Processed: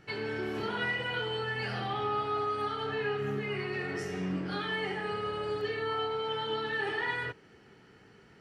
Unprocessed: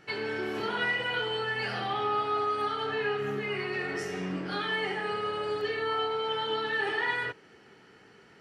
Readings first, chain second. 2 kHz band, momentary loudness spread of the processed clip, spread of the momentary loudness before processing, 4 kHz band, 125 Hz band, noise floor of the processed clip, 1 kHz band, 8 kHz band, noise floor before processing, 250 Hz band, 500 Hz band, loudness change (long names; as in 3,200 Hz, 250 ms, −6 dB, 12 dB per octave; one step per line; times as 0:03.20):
−3.5 dB, 3 LU, 5 LU, −3.5 dB, +3.0 dB, −58 dBFS, −3.0 dB, −3.5 dB, −57 dBFS, 0.0 dB, −2.0 dB, −2.5 dB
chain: low-shelf EQ 160 Hz +12 dB
level −3.5 dB